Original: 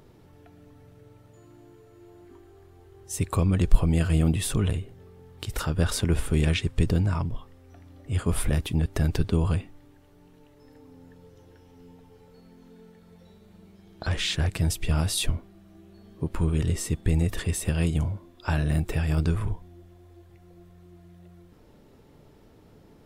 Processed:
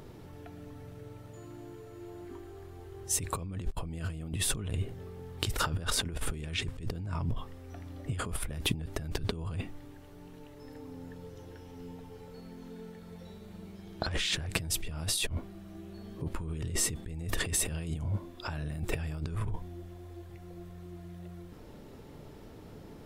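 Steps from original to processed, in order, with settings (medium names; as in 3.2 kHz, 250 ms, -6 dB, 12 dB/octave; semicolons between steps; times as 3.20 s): compressor with a negative ratio -32 dBFS, ratio -1; trim -2 dB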